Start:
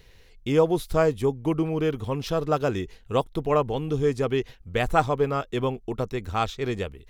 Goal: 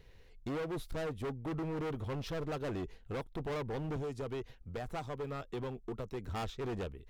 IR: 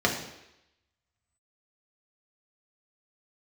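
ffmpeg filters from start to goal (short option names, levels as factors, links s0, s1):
-filter_complex "[0:a]highshelf=f=2300:g=-8.5,asettb=1/sr,asplit=3[s0][s1][s2];[s0]atrim=end=3.964[s3];[s1]atrim=start=3.96:end=6.29,asetpts=PTS-STARTPTS,afade=t=in:d=0.004:c=qsin,afade=t=out:st=2.326:d=0.004:c=qsin,acrossover=split=110|3200[s4][s5][s6];[s4]acompressor=threshold=0.00708:ratio=4[s7];[s5]acompressor=threshold=0.0316:ratio=4[s8];[s6]acompressor=threshold=0.00355:ratio=4[s9];[s7][s8][s9]amix=inputs=3:normalize=0[s10];[s2]atrim=start=6.286[s11];[s3][s10]acrossfade=d=0.004:c1=hsin:c2=qsin[s12];[s12][s11]acrossfade=d=0.004:c1=qsin:c2=hsin,alimiter=limit=0.168:level=0:latency=1:release=292,asoftclip=type=hard:threshold=0.0299,volume=0.596"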